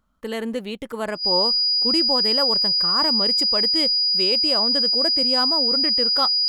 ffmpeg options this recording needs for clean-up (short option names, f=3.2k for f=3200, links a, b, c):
-af "bandreject=f=4.9k:w=30"